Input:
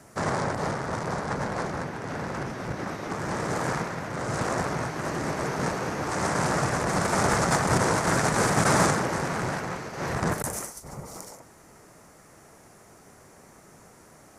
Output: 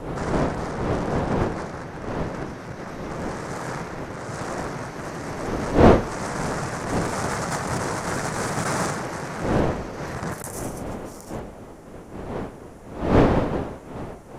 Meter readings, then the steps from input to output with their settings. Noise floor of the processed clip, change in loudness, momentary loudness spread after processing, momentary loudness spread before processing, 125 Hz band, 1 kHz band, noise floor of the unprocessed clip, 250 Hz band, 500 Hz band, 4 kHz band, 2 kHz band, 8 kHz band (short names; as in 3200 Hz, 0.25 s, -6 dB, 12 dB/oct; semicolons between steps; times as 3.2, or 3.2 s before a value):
-41 dBFS, +1.5 dB, 15 LU, 11 LU, +3.0 dB, 0.0 dB, -53 dBFS, +5.0 dB, +4.5 dB, -2.0 dB, -2.0 dB, -3.5 dB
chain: one diode to ground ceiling -12.5 dBFS; wind noise 520 Hz -24 dBFS; gain -2.5 dB